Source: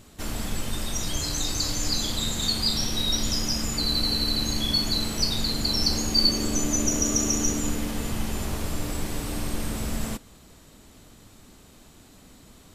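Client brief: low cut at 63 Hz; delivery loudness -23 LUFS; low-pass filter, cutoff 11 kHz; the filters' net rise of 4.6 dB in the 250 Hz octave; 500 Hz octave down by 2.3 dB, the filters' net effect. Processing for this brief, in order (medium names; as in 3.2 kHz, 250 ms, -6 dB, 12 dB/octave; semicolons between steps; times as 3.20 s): high-pass 63 Hz; low-pass 11 kHz; peaking EQ 250 Hz +7 dB; peaking EQ 500 Hz -6 dB; trim +2 dB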